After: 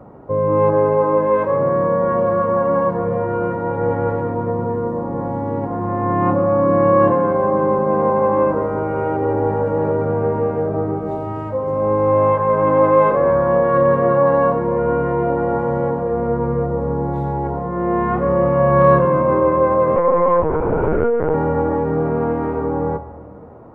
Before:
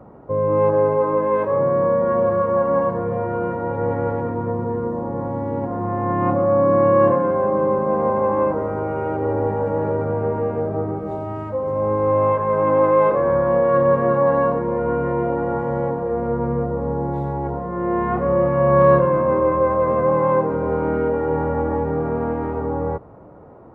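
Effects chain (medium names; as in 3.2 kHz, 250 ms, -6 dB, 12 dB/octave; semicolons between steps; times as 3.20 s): on a send at -12.5 dB: reverberation RT60 2.0 s, pre-delay 7 ms; 19.96–21.34 s: on the sum: LPC vocoder at 8 kHz pitch kept; trim +2.5 dB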